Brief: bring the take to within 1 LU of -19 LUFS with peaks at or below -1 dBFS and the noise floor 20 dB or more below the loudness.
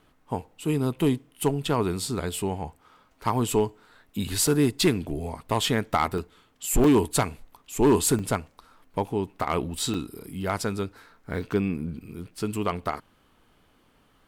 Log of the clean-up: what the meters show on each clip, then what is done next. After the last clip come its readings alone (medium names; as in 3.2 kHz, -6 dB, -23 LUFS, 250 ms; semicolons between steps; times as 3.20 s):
clipped samples 0.4%; clipping level -13.5 dBFS; dropouts 6; longest dropout 3.4 ms; loudness -26.5 LUFS; peak level -13.5 dBFS; loudness target -19.0 LUFS
-> clip repair -13.5 dBFS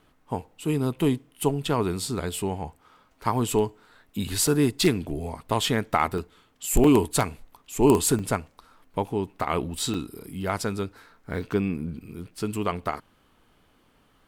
clipped samples 0.0%; dropouts 6; longest dropout 3.4 ms
-> interpolate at 1.65/4.47/6.18/6.84/8.19/9.94 s, 3.4 ms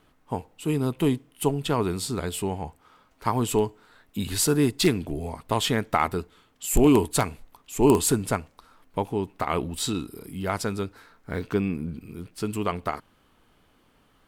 dropouts 0; loudness -26.5 LUFS; peak level -4.5 dBFS; loudness target -19.0 LUFS
-> trim +7.5 dB; peak limiter -1 dBFS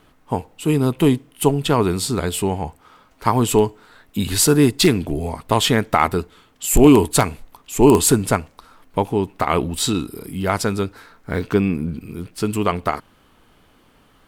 loudness -19.0 LUFS; peak level -1.0 dBFS; noise floor -56 dBFS